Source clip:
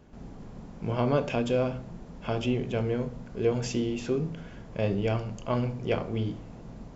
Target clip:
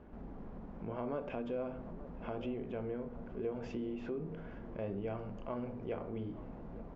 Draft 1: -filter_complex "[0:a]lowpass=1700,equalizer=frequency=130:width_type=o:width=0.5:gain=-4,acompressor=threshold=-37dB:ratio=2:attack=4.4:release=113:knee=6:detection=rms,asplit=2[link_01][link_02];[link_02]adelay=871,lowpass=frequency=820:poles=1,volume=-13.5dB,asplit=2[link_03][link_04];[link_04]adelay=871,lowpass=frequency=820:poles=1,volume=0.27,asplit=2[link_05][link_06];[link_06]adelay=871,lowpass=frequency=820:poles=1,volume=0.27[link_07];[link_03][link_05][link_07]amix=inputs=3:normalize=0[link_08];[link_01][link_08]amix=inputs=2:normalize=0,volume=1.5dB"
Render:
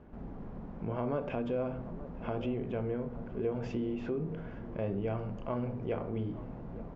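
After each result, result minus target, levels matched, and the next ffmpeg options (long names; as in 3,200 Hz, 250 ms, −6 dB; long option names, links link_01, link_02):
downward compressor: peak gain reduction −4.5 dB; 125 Hz band +3.0 dB
-filter_complex "[0:a]lowpass=1700,equalizer=frequency=130:width_type=o:width=0.5:gain=-4,acompressor=threshold=-46.5dB:ratio=2:attack=4.4:release=113:knee=6:detection=rms,asplit=2[link_01][link_02];[link_02]adelay=871,lowpass=frequency=820:poles=1,volume=-13.5dB,asplit=2[link_03][link_04];[link_04]adelay=871,lowpass=frequency=820:poles=1,volume=0.27,asplit=2[link_05][link_06];[link_06]adelay=871,lowpass=frequency=820:poles=1,volume=0.27[link_07];[link_03][link_05][link_07]amix=inputs=3:normalize=0[link_08];[link_01][link_08]amix=inputs=2:normalize=0,volume=1.5dB"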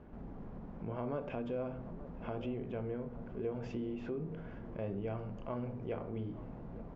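125 Hz band +3.0 dB
-filter_complex "[0:a]lowpass=1700,equalizer=frequency=130:width_type=o:width=0.5:gain=-11.5,acompressor=threshold=-46.5dB:ratio=2:attack=4.4:release=113:knee=6:detection=rms,asplit=2[link_01][link_02];[link_02]adelay=871,lowpass=frequency=820:poles=1,volume=-13.5dB,asplit=2[link_03][link_04];[link_04]adelay=871,lowpass=frequency=820:poles=1,volume=0.27,asplit=2[link_05][link_06];[link_06]adelay=871,lowpass=frequency=820:poles=1,volume=0.27[link_07];[link_03][link_05][link_07]amix=inputs=3:normalize=0[link_08];[link_01][link_08]amix=inputs=2:normalize=0,volume=1.5dB"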